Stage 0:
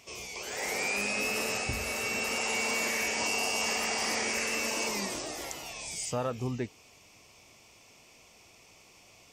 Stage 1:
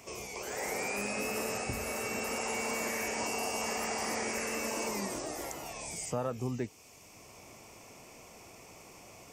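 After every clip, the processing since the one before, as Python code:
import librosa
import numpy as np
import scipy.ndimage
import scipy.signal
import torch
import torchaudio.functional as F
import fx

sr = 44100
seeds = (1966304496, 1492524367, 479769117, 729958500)

y = fx.peak_eq(x, sr, hz=3600.0, db=-11.0, octaves=1.5)
y = fx.band_squash(y, sr, depth_pct=40)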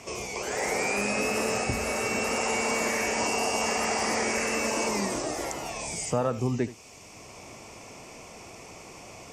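y = scipy.signal.sosfilt(scipy.signal.butter(2, 8700.0, 'lowpass', fs=sr, output='sos'), x)
y = y + 10.0 ** (-16.0 / 20.0) * np.pad(y, (int(77 * sr / 1000.0), 0))[:len(y)]
y = y * 10.0 ** (7.5 / 20.0)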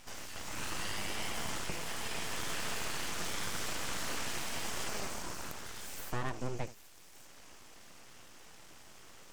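y = fx.echo_stepped(x, sr, ms=387, hz=3200.0, octaves=0.7, feedback_pct=70, wet_db=-11)
y = np.abs(y)
y = y * 10.0 ** (-7.5 / 20.0)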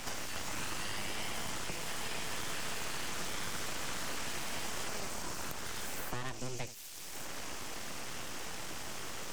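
y = fx.band_squash(x, sr, depth_pct=100)
y = y * 10.0 ** (-1.0 / 20.0)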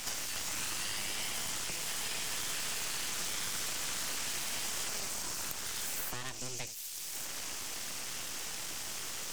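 y = fx.high_shelf(x, sr, hz=2400.0, db=12.0)
y = y * 10.0 ** (-4.5 / 20.0)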